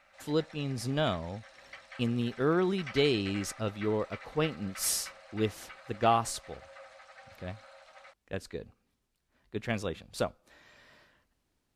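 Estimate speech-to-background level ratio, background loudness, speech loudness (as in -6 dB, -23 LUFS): 16.5 dB, -48.5 LUFS, -32.0 LUFS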